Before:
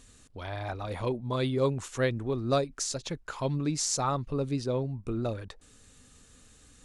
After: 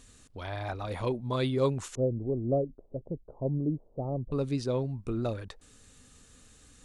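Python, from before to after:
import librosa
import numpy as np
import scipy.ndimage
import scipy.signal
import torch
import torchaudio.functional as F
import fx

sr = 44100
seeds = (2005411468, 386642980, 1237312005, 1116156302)

y = fx.steep_lowpass(x, sr, hz=660.0, slope=36, at=(1.95, 4.32))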